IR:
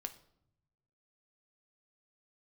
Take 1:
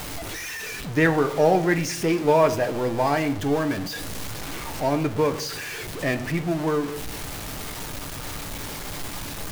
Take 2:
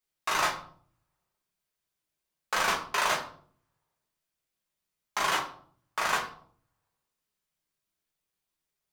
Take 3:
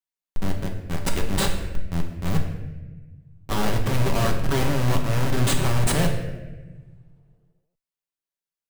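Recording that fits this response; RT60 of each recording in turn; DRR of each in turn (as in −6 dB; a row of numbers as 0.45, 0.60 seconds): 1; 0.75, 0.55, 1.3 seconds; 7.5, −3.5, 1.5 decibels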